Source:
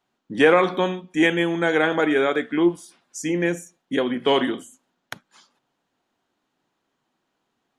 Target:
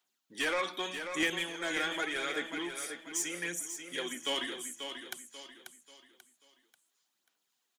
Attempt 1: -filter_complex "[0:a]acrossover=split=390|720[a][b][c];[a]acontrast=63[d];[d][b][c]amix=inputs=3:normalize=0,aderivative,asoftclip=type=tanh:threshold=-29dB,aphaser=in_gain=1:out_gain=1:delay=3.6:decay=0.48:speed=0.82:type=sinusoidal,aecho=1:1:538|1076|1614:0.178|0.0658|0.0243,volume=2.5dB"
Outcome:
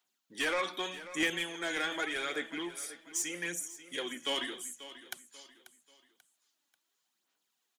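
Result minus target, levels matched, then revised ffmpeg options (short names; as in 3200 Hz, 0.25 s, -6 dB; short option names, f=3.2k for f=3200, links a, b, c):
echo-to-direct -7 dB
-filter_complex "[0:a]acrossover=split=390|720[a][b][c];[a]acontrast=63[d];[d][b][c]amix=inputs=3:normalize=0,aderivative,asoftclip=type=tanh:threshold=-29dB,aphaser=in_gain=1:out_gain=1:delay=3.6:decay=0.48:speed=0.82:type=sinusoidal,aecho=1:1:538|1076|1614|2152:0.398|0.147|0.0545|0.0202,volume=2.5dB"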